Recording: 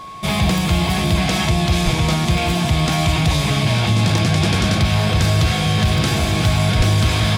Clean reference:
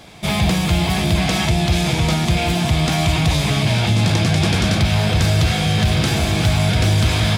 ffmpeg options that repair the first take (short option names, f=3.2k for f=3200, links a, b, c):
-filter_complex "[0:a]adeclick=t=4,bandreject=f=1.1k:w=30,asplit=3[a][b][c];[a]afade=t=out:st=1.84:d=0.02[d];[b]highpass=f=140:w=0.5412,highpass=f=140:w=1.3066,afade=t=in:st=1.84:d=0.02,afade=t=out:st=1.96:d=0.02[e];[c]afade=t=in:st=1.96:d=0.02[f];[d][e][f]amix=inputs=3:normalize=0,asplit=3[g][h][i];[g]afade=t=out:st=6.77:d=0.02[j];[h]highpass=f=140:w=0.5412,highpass=f=140:w=1.3066,afade=t=in:st=6.77:d=0.02,afade=t=out:st=6.89:d=0.02[k];[i]afade=t=in:st=6.89:d=0.02[l];[j][k][l]amix=inputs=3:normalize=0"